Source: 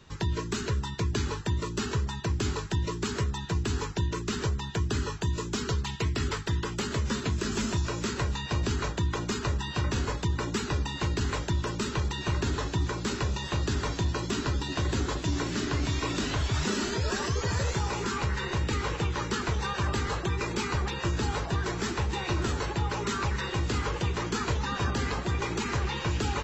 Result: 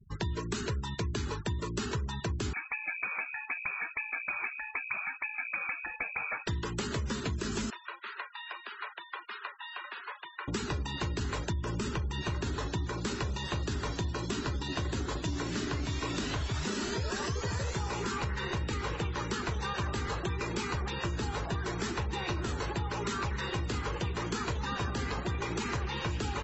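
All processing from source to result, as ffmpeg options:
ffmpeg -i in.wav -filter_complex "[0:a]asettb=1/sr,asplit=3[link_01][link_02][link_03];[link_01]atrim=end=2.534[link_04];[link_02]atrim=start=2.53:end=6.47,asetpts=PTS-STARTPTS,afade=type=in:duration=0.004:curve=qsin,afade=type=out:start_time=3.936:duration=0.004:curve=qsin,highpass=frequency=170:width=0.5412,highpass=frequency=170:width=1.3066,lowpass=frequency=2300:width_type=q:width=0.5098,lowpass=frequency=2300:width_type=q:width=0.6013,lowpass=frequency=2300:width_type=q:width=0.9,lowpass=frequency=2300:width_type=q:width=2.563,afreqshift=-2700[link_05];[link_03]atrim=start=6.466[link_06];[link_04][link_05]acrossfade=duration=0.004:curve1=hsin:curve2=qsin[link_07];[link_07][link_06]acrossfade=duration=0.004:curve1=qsin:curve2=hsin,asettb=1/sr,asplit=3[link_08][link_09][link_10];[link_08]atrim=end=7.704[link_11];[link_09]atrim=start=7.7:end=10.48,asetpts=PTS-STARTPTS,afade=type=in:duration=0.004:curve=qsin,afade=type=out:start_time=2.776:duration=0.004:curve=qsin,highpass=1300,aemphasis=mode=reproduction:type=50fm,acrossover=split=3300[link_12][link_13];[link_13]acompressor=threshold=-54dB:ratio=4:attack=1:release=60[link_14];[link_12][link_14]amix=inputs=2:normalize=0[link_15];[link_10]atrim=start=10.476[link_16];[link_11][link_15]acrossfade=duration=0.004:curve1=hsin:curve2=qsin[link_17];[link_17][link_16]acrossfade=duration=0.004:curve1=qsin:curve2=hsin,asettb=1/sr,asplit=3[link_18][link_19][link_20];[link_18]atrim=end=11.524[link_21];[link_19]atrim=start=11.52:end=12.22,asetpts=PTS-STARTPTS,afade=type=in:duration=0.004:curve=qsin,afade=type=out:start_time=0.696:duration=0.004:curve=qsin,lowshelf=frequency=180:gain=6,bandreject=frequency=4000:width=9.1,acompressor=threshold=-26dB:ratio=2:attack=3.2:release=140:knee=1:detection=peak[link_22];[link_20]atrim=start=12.216[link_23];[link_21][link_22]acrossfade=duration=0.004:curve1=hsin:curve2=qsin[link_24];[link_24][link_23]acrossfade=duration=0.004:curve1=qsin:curve2=hsin,afftfilt=real='re*gte(hypot(re,im),0.00794)':imag='im*gte(hypot(re,im),0.00794)':win_size=1024:overlap=0.75,acompressor=threshold=-30dB:ratio=6" out.wav

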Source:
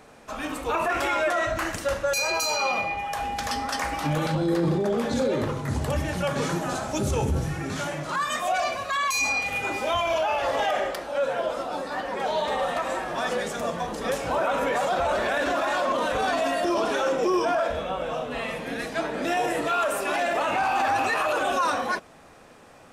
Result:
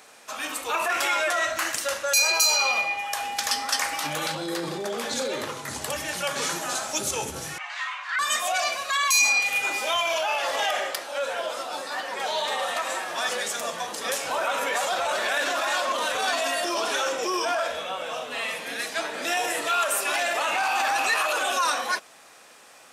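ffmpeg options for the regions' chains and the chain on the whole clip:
ffmpeg -i in.wav -filter_complex "[0:a]asettb=1/sr,asplit=3[link_01][link_02][link_03];[link_01]atrim=end=7.584[link_04];[link_02]atrim=start=7.58:end=8.19,asetpts=PTS-STARTPTS,afade=type=in:duration=0.004:curve=qsin,afade=type=out:start_time=0.606:duration=0.004:curve=qsin,highpass=570,lowpass=2400,afreqshift=440[link_05];[link_03]atrim=start=8.186[link_06];[link_04][link_05]acrossfade=duration=0.004:curve1=hsin:curve2=qsin[link_07];[link_07][link_06]acrossfade=duration=0.004:curve1=qsin:curve2=hsin,highpass=frequency=790:poles=1,highshelf=frequency=2600:gain=10" out.wav

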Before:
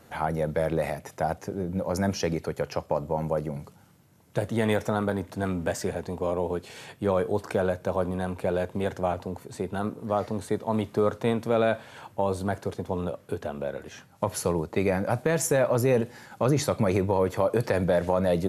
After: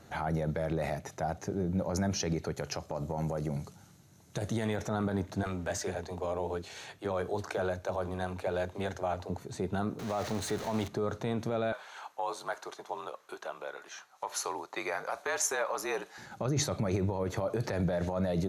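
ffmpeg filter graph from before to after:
ffmpeg -i in.wav -filter_complex "[0:a]asettb=1/sr,asplit=3[link_01][link_02][link_03];[link_01]atrim=end=2.574[link_04];[link_02]atrim=start=2.57:end=4.69,asetpts=PTS-STARTPTS,afade=type=in:duration=0.004:curve=qsin,afade=type=out:start_time=2.116:duration=0.004:curve=qsin,lowpass=11000,highshelf=frequency=6000:gain=12,acompressor=threshold=-27dB:ratio=3:attack=3.2:release=140:knee=1:detection=peak[link_05];[link_03]atrim=start=4.686[link_06];[link_04][link_05]acrossfade=duration=0.004:curve1=hsin:curve2=qsin[link_07];[link_07][link_06]acrossfade=duration=0.004:curve1=qsin:curve2=hsin,asettb=1/sr,asplit=3[link_08][link_09][link_10];[link_08]atrim=end=5.434[link_11];[link_09]atrim=start=5.43:end=9.3,asetpts=PTS-STARTPTS,afade=type=in:duration=0.004:curve=qsin,afade=type=out:start_time=3.866:duration=0.004:curve=qsin,equalizer=frequency=150:width_type=o:width=1.7:gain=-9,acrossover=split=330[link_12][link_13];[link_12]adelay=30[link_14];[link_14][link_13]amix=inputs=2:normalize=0,atrim=end_sample=170667[link_15];[link_10]atrim=start=9.296[link_16];[link_11][link_15]acrossfade=duration=0.004:curve1=hsin:curve2=qsin[link_17];[link_17][link_16]acrossfade=duration=0.004:curve1=qsin:curve2=hsin,asettb=1/sr,asplit=3[link_18][link_19][link_20];[link_18]atrim=end=9.994[link_21];[link_19]atrim=start=9.99:end=10.88,asetpts=PTS-STARTPTS,afade=type=in:duration=0.004:curve=qsin,afade=type=out:start_time=0.886:duration=0.004:curve=qsin,aeval=exprs='val(0)+0.5*0.0251*sgn(val(0))':channel_layout=same,lowshelf=frequency=490:gain=-6.5[link_22];[link_20]atrim=start=10.876[link_23];[link_21][link_22]acrossfade=duration=0.004:curve1=hsin:curve2=qsin[link_24];[link_24][link_23]acrossfade=duration=0.004:curve1=qsin:curve2=hsin,asettb=1/sr,asplit=3[link_25][link_26][link_27];[link_25]atrim=end=11.724[link_28];[link_26]atrim=start=11.72:end=16.18,asetpts=PTS-STARTPTS,afade=type=in:duration=0.004:curve=qsin,afade=type=out:start_time=4.456:duration=0.004:curve=qsin,equalizer=frequency=1100:width_type=o:width=0.54:gain=6.5,afreqshift=-46,highpass=760[link_29];[link_27]atrim=start=16.176[link_30];[link_28][link_29]acrossfade=duration=0.004:curve1=hsin:curve2=qsin[link_31];[link_31][link_30]acrossfade=duration=0.004:curve1=qsin:curve2=hsin,highshelf=frequency=2700:gain=-9,alimiter=limit=-22dB:level=0:latency=1:release=38,equalizer=frequency=250:width_type=o:width=0.33:gain=-4,equalizer=frequency=500:width_type=o:width=0.33:gain=-6,equalizer=frequency=1000:width_type=o:width=0.33:gain=-4,equalizer=frequency=4000:width_type=o:width=0.33:gain=7,equalizer=frequency=6300:width_type=o:width=0.33:gain=10,volume=1dB" out.wav

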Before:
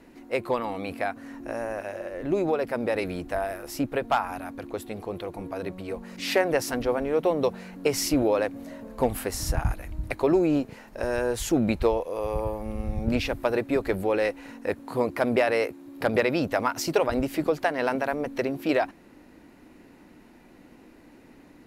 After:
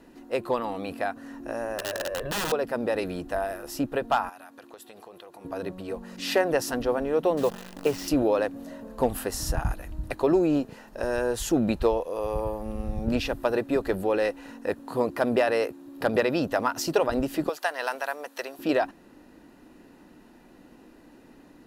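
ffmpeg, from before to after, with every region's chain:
ffmpeg -i in.wav -filter_complex "[0:a]asettb=1/sr,asplit=3[link_01][link_02][link_03];[link_01]atrim=end=1.784[link_04];[link_02]atrim=start=1.78:end=2.52,asetpts=PTS-STARTPTS,afade=type=in:duration=0.004:curve=qsin,afade=type=out:start_time=0.736:duration=0.004:curve=qsin,equalizer=frequency=6500:width=0.99:gain=-6,aecho=1:1:1.8:0.83,atrim=end_sample=32634,aeval=exprs='(mod(15*val(0)+1,2)-1)/15':channel_layout=same[link_05];[link_03]atrim=start=2.516[link_06];[link_04][link_05]acrossfade=duration=0.004:curve1=hsin:curve2=qsin[link_07];[link_07][link_06]acrossfade=duration=0.004:curve1=qsin:curve2=hsin,asettb=1/sr,asplit=3[link_08][link_09][link_10];[link_08]atrim=end=4.294[link_11];[link_09]atrim=start=4.29:end=5.45,asetpts=PTS-STARTPTS,afade=type=in:duration=0.004:curve=qsin,afade=type=out:start_time=1.156:duration=0.004:curve=qsin,highpass=frequency=960:poles=1,acompressor=threshold=-41dB:ratio=6:attack=3.2:release=140:knee=1:detection=peak[link_12];[link_10]atrim=start=5.446[link_13];[link_11][link_12]acrossfade=duration=0.004:curve1=hsin:curve2=qsin[link_14];[link_14][link_13]acrossfade=duration=0.004:curve1=qsin:curve2=hsin,asettb=1/sr,asplit=3[link_15][link_16][link_17];[link_15]atrim=end=7.374[link_18];[link_16]atrim=start=7.37:end=8.08,asetpts=PTS-STARTPTS,afade=type=in:duration=0.004:curve=qsin,afade=type=out:start_time=0.706:duration=0.004:curve=qsin,lowpass=2900,acrusher=bits=7:dc=4:mix=0:aa=0.000001[link_19];[link_17]atrim=start=8.076[link_20];[link_18][link_19]acrossfade=duration=0.004:curve1=hsin:curve2=qsin[link_21];[link_21][link_20]acrossfade=duration=0.004:curve1=qsin:curve2=hsin,asettb=1/sr,asplit=3[link_22][link_23][link_24];[link_22]atrim=end=17.494[link_25];[link_23]atrim=start=17.49:end=18.59,asetpts=PTS-STARTPTS,afade=type=in:duration=0.004:curve=qsin,afade=type=out:start_time=1.096:duration=0.004:curve=qsin,highpass=750,highshelf=frequency=5600:gain=8[link_26];[link_24]atrim=start=18.586[link_27];[link_25][link_26]acrossfade=duration=0.004:curve1=hsin:curve2=qsin[link_28];[link_28][link_27]acrossfade=duration=0.004:curve1=qsin:curve2=hsin,equalizer=frequency=91:width=1.4:gain=-4,bandreject=frequency=2200:width=5.2" out.wav

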